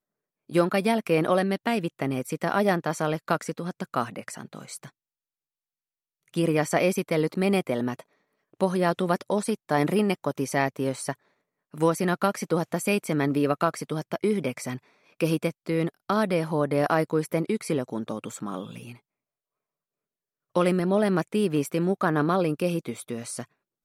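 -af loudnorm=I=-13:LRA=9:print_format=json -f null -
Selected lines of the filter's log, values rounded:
"input_i" : "-26.4",
"input_tp" : "-8.5",
"input_lra" : "4.6",
"input_thresh" : "-36.8",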